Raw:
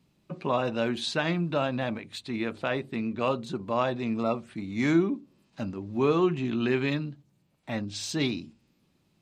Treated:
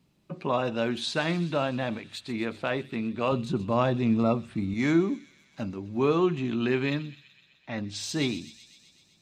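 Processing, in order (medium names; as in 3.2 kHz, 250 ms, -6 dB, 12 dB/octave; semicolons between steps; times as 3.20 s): 3.32–4.74 s: bass shelf 230 Hz +11.5 dB; 6.99–7.78 s: rippled Chebyshev low-pass 6.8 kHz, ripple 3 dB; feedback echo behind a high-pass 127 ms, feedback 72%, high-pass 3.4 kHz, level -12 dB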